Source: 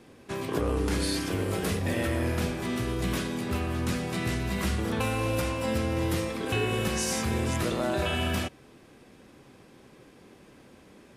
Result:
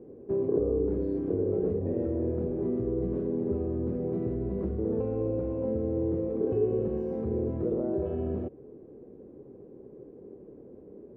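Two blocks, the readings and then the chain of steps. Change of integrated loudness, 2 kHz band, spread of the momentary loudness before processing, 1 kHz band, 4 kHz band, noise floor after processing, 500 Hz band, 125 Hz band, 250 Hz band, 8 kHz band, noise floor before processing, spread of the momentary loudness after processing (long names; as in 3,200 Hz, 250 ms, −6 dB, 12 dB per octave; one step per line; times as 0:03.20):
−1.0 dB, below −25 dB, 3 LU, −14.5 dB, below −40 dB, −50 dBFS, +3.5 dB, −4.0 dB, 0.0 dB, below −40 dB, −55 dBFS, 21 LU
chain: downward compressor 3 to 1, threshold −31 dBFS, peak gain reduction 6.5 dB
low-pass with resonance 430 Hz, resonance Q 3.7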